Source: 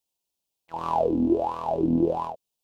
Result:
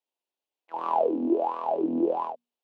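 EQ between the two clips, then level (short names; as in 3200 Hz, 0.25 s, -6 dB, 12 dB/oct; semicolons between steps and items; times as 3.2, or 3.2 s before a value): HPF 180 Hz 24 dB/oct; three-band isolator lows -22 dB, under 240 Hz, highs -16 dB, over 3200 Hz; notches 60/120/180/240 Hz; 0.0 dB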